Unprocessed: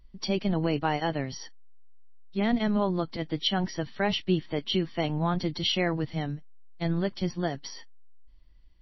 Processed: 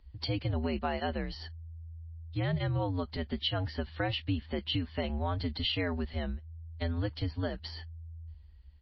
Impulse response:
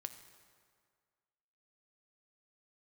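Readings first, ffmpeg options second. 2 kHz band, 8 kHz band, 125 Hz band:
−4.5 dB, can't be measured, −1.0 dB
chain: -af "afreqshift=-82,acompressor=threshold=-32dB:ratio=2,aresample=11025,aresample=44100"

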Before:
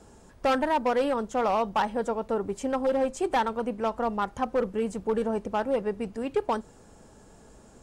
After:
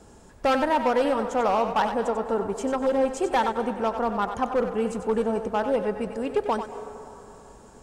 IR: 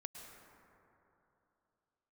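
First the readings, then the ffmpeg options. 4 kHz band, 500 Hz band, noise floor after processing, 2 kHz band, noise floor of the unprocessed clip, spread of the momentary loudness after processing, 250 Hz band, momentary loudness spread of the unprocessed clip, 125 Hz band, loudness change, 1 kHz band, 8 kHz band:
+2.5 dB, +2.5 dB, −50 dBFS, +3.0 dB, −54 dBFS, 7 LU, +2.5 dB, 5 LU, +2.0 dB, +2.5 dB, +3.0 dB, +2.5 dB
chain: -filter_complex "[0:a]asplit=2[link_01][link_02];[link_02]highpass=330[link_03];[1:a]atrim=start_sample=2205,adelay=94[link_04];[link_03][link_04]afir=irnorm=-1:irlink=0,volume=-3dB[link_05];[link_01][link_05]amix=inputs=2:normalize=0,volume=2dB"

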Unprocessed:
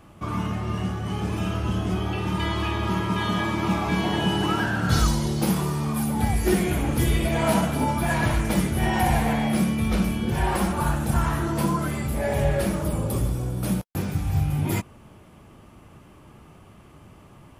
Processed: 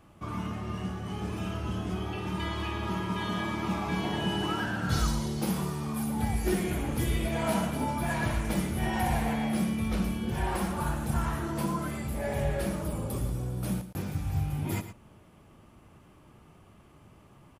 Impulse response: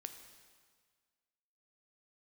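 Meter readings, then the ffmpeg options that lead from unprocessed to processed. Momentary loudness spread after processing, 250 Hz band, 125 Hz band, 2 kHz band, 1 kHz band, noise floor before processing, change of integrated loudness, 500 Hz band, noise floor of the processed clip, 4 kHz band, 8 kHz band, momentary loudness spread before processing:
6 LU, −6.5 dB, −7.5 dB, −6.5 dB, −6.5 dB, −50 dBFS, −7.0 dB, −7.0 dB, −57 dBFS, −6.5 dB, −6.5 dB, 6 LU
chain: -af "aecho=1:1:113:0.251,volume=-7dB"

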